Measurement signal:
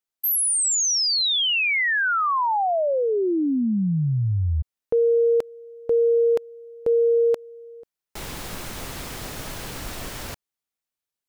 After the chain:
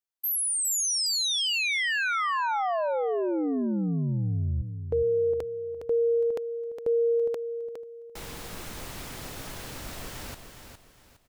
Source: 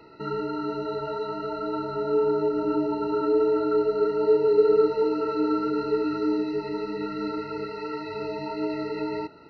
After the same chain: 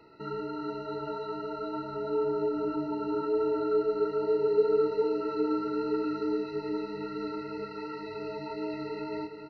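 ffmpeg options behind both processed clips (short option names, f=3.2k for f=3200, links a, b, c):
-af "aecho=1:1:411|822|1233|1644:0.398|0.127|0.0408|0.013,volume=-6dB"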